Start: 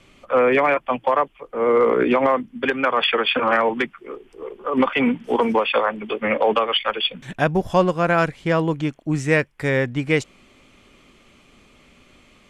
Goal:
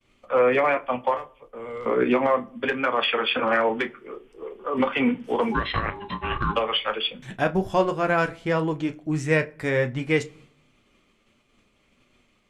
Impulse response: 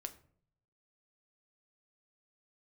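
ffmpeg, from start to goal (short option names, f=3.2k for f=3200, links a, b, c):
-filter_complex "[0:a]flanger=delay=8.3:depth=1.7:regen=-44:speed=1.4:shape=sinusoidal,asettb=1/sr,asplit=3[a][b][c];[a]atrim=end=1.164[d];[b]atrim=start=1.16:end=1.86,asetpts=PTS-STARTPTS,afade=t=in:d=0.004:c=qsin,afade=t=out:st=0.696:d=0.004:c=qsin,acrossover=split=130|3000[e][f][g];[f]acompressor=threshold=-42dB:ratio=2.5[h];[e][h][g]amix=inputs=3:normalize=0[i];[c]atrim=start=1.856[j];[d][i]acrossfade=d=0.004:c1=hsin:c2=qsin[k];[k][j]acrossfade=d=0.004:c1=qsin:c2=hsin,asplit=3[l][m][n];[l]afade=t=out:st=5.51:d=0.02[o];[m]aeval=exprs='val(0)*sin(2*PI*610*n/s)':c=same,afade=t=in:st=5.51:d=0.02,afade=t=out:st=6.53:d=0.02[p];[n]afade=t=in:st=6.53:d=0.02[q];[o][p][q]amix=inputs=3:normalize=0,agate=range=-33dB:threshold=-49dB:ratio=3:detection=peak,asplit=2[r][s];[1:a]atrim=start_sample=2205,highshelf=f=5.1k:g=-9,adelay=32[t];[s][t]afir=irnorm=-1:irlink=0,volume=-7.5dB[u];[r][u]amix=inputs=2:normalize=0"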